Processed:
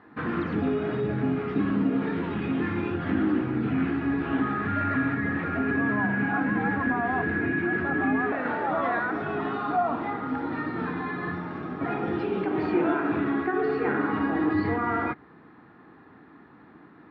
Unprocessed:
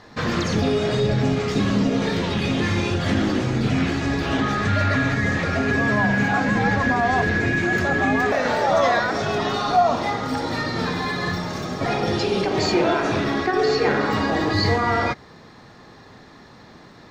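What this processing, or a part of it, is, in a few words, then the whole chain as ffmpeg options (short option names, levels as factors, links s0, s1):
bass cabinet: -af "highpass=86,equalizer=f=110:t=q:w=4:g=-6,equalizer=f=300:t=q:w=4:g=9,equalizer=f=570:t=q:w=4:g=-8,equalizer=f=1400:t=q:w=4:g=4,equalizer=f=2100:t=q:w=4:g=-3,lowpass=f=2400:w=0.5412,lowpass=f=2400:w=1.3066,volume=0.473"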